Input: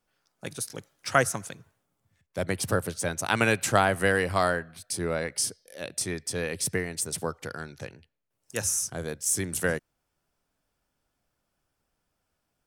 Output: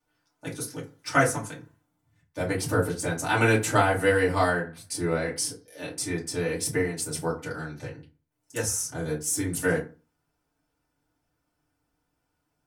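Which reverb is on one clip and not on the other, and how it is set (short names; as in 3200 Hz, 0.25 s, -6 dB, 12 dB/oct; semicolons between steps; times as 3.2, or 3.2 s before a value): FDN reverb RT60 0.33 s, low-frequency decay 1.2×, high-frequency decay 0.55×, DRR -7.5 dB; gain -7 dB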